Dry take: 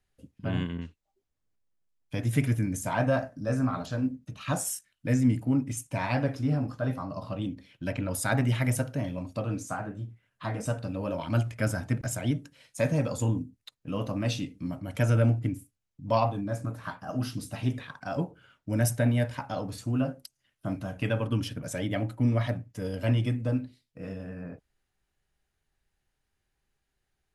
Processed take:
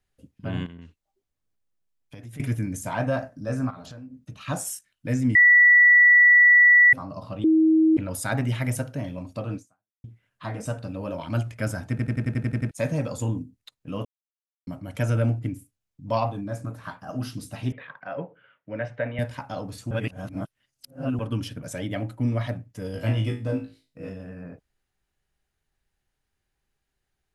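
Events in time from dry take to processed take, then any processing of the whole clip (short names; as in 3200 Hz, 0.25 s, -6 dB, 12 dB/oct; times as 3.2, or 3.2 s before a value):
0.66–2.4 compressor, threshold -39 dBFS
3.7–4.24 compressor 16:1, threshold -37 dBFS
5.35–6.93 bleep 1950 Hz -11 dBFS
7.44–7.97 bleep 318 Hz -14.5 dBFS
9.56–10.04 fade out exponential
11.9 stutter in place 0.09 s, 9 plays
14.05–14.67 mute
17.72–19.19 speaker cabinet 210–2900 Hz, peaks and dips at 240 Hz -9 dB, 350 Hz -7 dB, 520 Hz +5 dB, 800 Hz -3 dB, 1900 Hz +5 dB
19.91–21.19 reverse
22.93–24.1 flutter echo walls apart 3.2 m, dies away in 0.29 s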